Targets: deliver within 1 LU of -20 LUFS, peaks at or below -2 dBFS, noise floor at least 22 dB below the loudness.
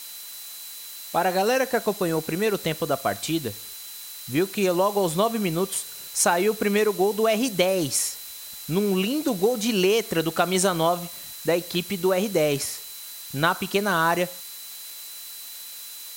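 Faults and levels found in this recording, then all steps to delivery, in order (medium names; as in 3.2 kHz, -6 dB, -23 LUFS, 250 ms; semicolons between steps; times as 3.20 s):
steady tone 4 kHz; tone level -44 dBFS; noise floor -39 dBFS; noise floor target -46 dBFS; loudness -24.0 LUFS; peak level -8.0 dBFS; loudness target -20.0 LUFS
-> band-stop 4 kHz, Q 30; noise print and reduce 7 dB; trim +4 dB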